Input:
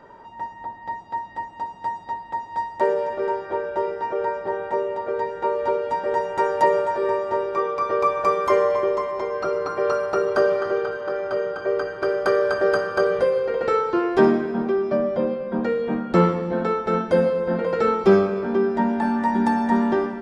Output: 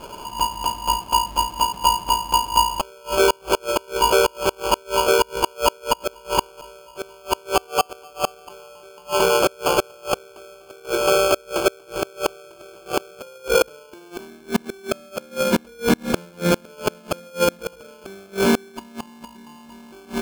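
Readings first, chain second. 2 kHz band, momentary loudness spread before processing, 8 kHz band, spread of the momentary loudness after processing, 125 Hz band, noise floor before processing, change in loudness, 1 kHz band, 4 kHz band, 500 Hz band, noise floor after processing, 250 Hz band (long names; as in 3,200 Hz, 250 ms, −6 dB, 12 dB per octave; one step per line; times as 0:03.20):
+2.0 dB, 10 LU, can't be measured, 18 LU, −2.0 dB, −41 dBFS, +0.5 dB, +1.5 dB, +17.0 dB, −2.5 dB, −47 dBFS, −3.5 dB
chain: in parallel at +2 dB: brickwall limiter −17 dBFS, peak gain reduction 11.5 dB
on the sum: gate with flip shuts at −9 dBFS, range −31 dB
decimation without filtering 23×
level +2.5 dB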